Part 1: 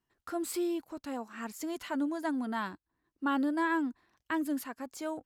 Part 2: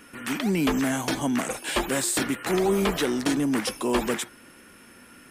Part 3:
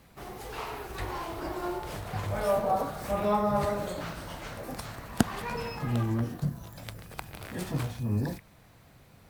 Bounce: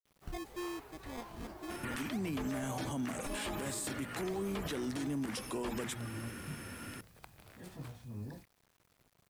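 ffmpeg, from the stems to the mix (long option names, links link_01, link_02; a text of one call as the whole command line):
ffmpeg -i stem1.wav -i stem2.wav -i stem3.wav -filter_complex "[0:a]lowpass=2300,equalizer=frequency=1400:width_type=o:width=0.45:gain=12.5,acrusher=samples=31:mix=1:aa=0.000001,volume=-9dB[link_01];[1:a]equalizer=frequency=92:width=1.1:gain=13.5,bandreject=frequency=60:width_type=h:width=6,bandreject=frequency=120:width_type=h:width=6,bandreject=frequency=180:width_type=h:width=6,bandreject=frequency=240:width_type=h:width=6,alimiter=limit=-19.5dB:level=0:latency=1:release=227,adelay=1700,volume=2.5dB[link_02];[2:a]adelay=50,volume=-15dB[link_03];[link_01][link_02]amix=inputs=2:normalize=0,acompressor=threshold=-35dB:ratio=2.5,volume=0dB[link_04];[link_03][link_04]amix=inputs=2:normalize=0,acrusher=bits=10:mix=0:aa=0.000001,alimiter=level_in=5.5dB:limit=-24dB:level=0:latency=1:release=66,volume=-5.5dB" out.wav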